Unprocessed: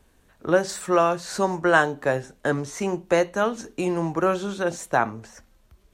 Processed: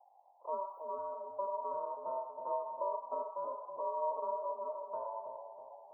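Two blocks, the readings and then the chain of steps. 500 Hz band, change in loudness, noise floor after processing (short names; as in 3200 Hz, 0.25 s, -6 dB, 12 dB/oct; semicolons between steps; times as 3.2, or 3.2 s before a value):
-15.5 dB, -15.5 dB, -64 dBFS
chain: inverse Chebyshev band-stop 1100–9000 Hz, stop band 80 dB; ring modulator 780 Hz; split-band echo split 880 Hz, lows 0.323 s, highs 0.104 s, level -5.5 dB; gain -1.5 dB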